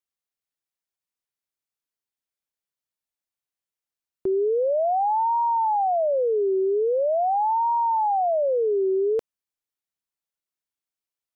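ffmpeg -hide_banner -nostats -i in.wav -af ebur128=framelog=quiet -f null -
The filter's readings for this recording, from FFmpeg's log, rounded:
Integrated loudness:
  I:         -22.6 LUFS
  Threshold: -32.6 LUFS
Loudness range:
  LRA:         6.9 LU
  Threshold: -44.0 LUFS
  LRA low:   -29.1 LUFS
  LRA high:  -22.2 LUFS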